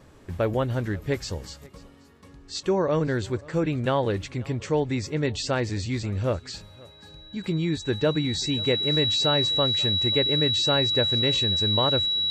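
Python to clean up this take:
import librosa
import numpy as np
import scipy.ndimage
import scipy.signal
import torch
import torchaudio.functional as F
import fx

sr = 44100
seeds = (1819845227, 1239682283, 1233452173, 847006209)

y = fx.notch(x, sr, hz=3900.0, q=30.0)
y = fx.fix_echo_inverse(y, sr, delay_ms=534, level_db=-23.0)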